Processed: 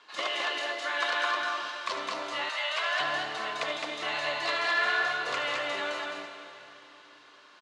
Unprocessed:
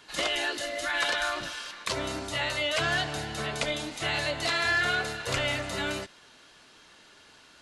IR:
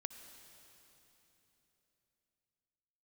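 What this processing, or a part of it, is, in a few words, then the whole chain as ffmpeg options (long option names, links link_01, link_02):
station announcement: -filter_complex "[0:a]highpass=390,lowpass=4800,equalizer=frequency=1100:width_type=o:width=0.26:gain=9.5,aecho=1:1:75.8|212.8:0.282|0.708[link_01];[1:a]atrim=start_sample=2205[link_02];[link_01][link_02]afir=irnorm=-1:irlink=0,asettb=1/sr,asplit=3[link_03][link_04][link_05];[link_03]atrim=end=2.494[link_06];[link_04]atrim=start=2.49:end=3,asetpts=PTS-STARTPTS,afade=type=in:duration=0.004:curve=qsin,afade=type=out:start_time=0.506:duration=0.004:curve=qsin,highpass=730[link_07];[link_05]atrim=start=2.996[link_08];[link_06][link_07]acrossfade=duration=0.004:curve1=hsin:curve2=qsin[link_09];[link_09][link_08]acrossfade=duration=0.004:curve1=qsin:curve2=hsin"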